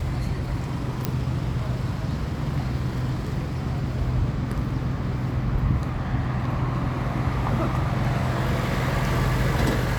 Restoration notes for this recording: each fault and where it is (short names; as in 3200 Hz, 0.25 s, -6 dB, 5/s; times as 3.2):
1.05 pop -9 dBFS